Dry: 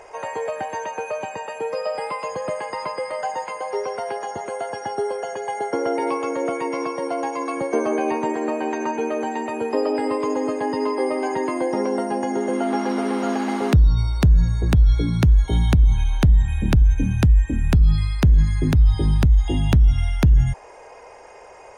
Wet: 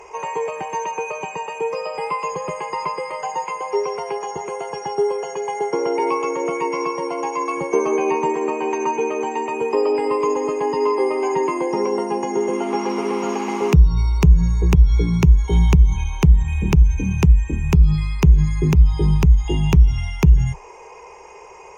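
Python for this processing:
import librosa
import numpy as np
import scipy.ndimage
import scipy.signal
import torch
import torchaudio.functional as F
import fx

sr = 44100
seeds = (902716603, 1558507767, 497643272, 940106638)

y = fx.ripple_eq(x, sr, per_octave=0.76, db=12)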